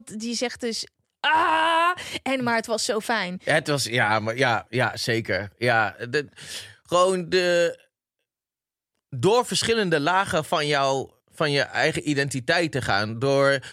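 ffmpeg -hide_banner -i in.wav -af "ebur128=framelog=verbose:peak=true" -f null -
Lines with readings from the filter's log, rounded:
Integrated loudness:
  I:         -22.9 LUFS
  Threshold: -33.2 LUFS
Loudness range:
  LRA:         1.9 LU
  Threshold: -43.6 LUFS
  LRA low:   -24.5 LUFS
  LRA high:  -22.6 LUFS
True peak:
  Peak:       -5.9 dBFS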